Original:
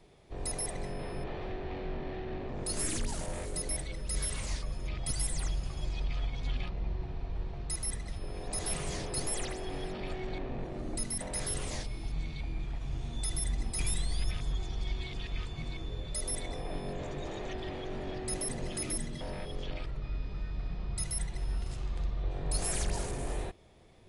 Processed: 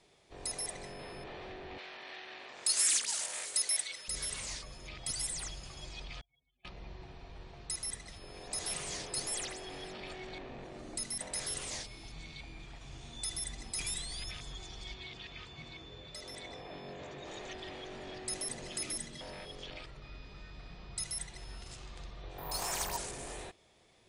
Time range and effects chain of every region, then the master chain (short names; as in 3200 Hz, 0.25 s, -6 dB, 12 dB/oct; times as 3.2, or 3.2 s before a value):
1.78–4.08 HPF 530 Hz 6 dB/oct + tilt shelf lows -7.5 dB, about 790 Hz
6.21–6.65 spectral contrast raised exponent 2.4 + BPF 390–5400 Hz
14.94–17.28 HPF 58 Hz + air absorption 100 m + careless resampling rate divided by 2×, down none, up filtered
22.38–22.97 bell 960 Hz +12.5 dB 0.8 oct + careless resampling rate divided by 3×, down filtered, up zero stuff
whole clip: LPF 9200 Hz 24 dB/oct; tilt +2.5 dB/oct; gain -3.5 dB